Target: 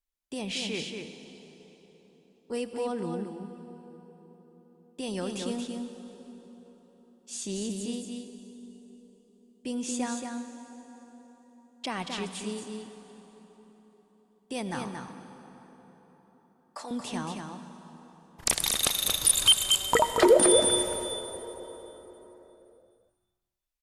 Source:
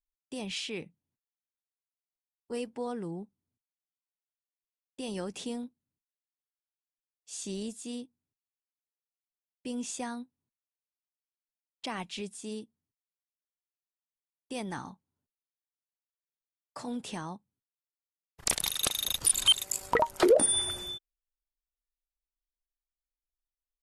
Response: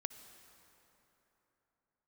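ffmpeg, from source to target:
-filter_complex "[0:a]asettb=1/sr,asplit=3[link_01][link_02][link_03];[link_01]atrim=end=14.884[link_04];[link_02]atrim=start=14.88:end=16.91,asetpts=PTS-STARTPTS,afade=type=in:duration=0.004:curve=qsin,afade=type=out:start_time=2.026:duration=0.004:curve=qsin,highpass=510[link_05];[link_03]atrim=start=16.906[link_06];[link_04][link_05]acrossfade=duration=0.004:curve1=hsin:curve2=qsin[link_07];[link_07][link_06]acrossfade=duration=0.004:curve1=qsin:curve2=hsin,aecho=1:1:228:0.531[link_08];[1:a]atrim=start_sample=2205,asetrate=35280,aresample=44100[link_09];[link_08][link_09]afir=irnorm=-1:irlink=0,volume=4dB"

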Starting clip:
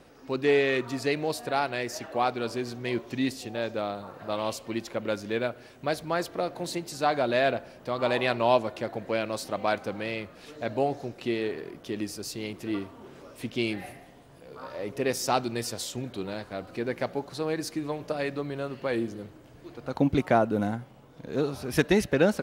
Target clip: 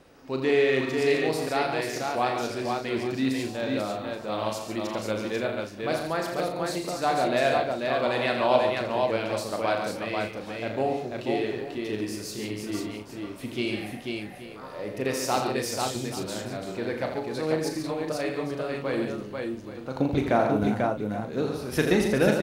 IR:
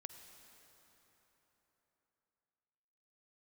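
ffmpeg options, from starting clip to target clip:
-filter_complex "[0:a]asplit=2[link_01][link_02];[link_02]adelay=38,volume=-7dB[link_03];[link_01][link_03]amix=inputs=2:normalize=0,asplit=2[link_04][link_05];[link_05]aecho=0:1:83|140|491|827:0.422|0.398|0.668|0.178[link_06];[link_04][link_06]amix=inputs=2:normalize=0,volume=-1.5dB"

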